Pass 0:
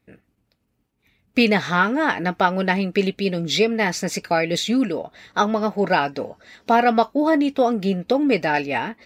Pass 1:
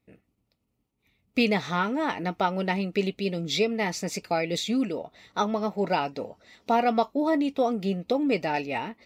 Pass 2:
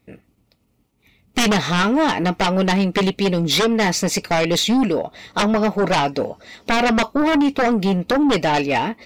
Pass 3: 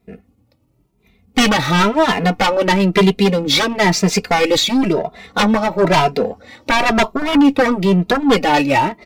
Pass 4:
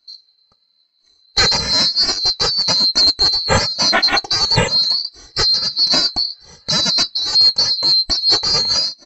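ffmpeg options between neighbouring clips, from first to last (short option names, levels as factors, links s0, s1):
-af "equalizer=f=1600:w=6.7:g=-13,volume=0.501"
-af "aeval=exprs='0.316*sin(PI/2*3.98*val(0)/0.316)':c=same,volume=0.708"
-filter_complex "[0:a]asplit=2[s0][s1];[s1]adynamicsmooth=sensitivity=7.5:basefreq=1500,volume=1.33[s2];[s0][s2]amix=inputs=2:normalize=0,asplit=2[s3][s4];[s4]adelay=2.5,afreqshift=0.99[s5];[s3][s5]amix=inputs=2:normalize=1"
-af "afftfilt=real='real(if(lt(b,736),b+184*(1-2*mod(floor(b/184),2)),b),0)':imag='imag(if(lt(b,736),b+184*(1-2*mod(floor(b/184),2)),b),0)':win_size=2048:overlap=0.75,lowpass=2800,volume=2.24"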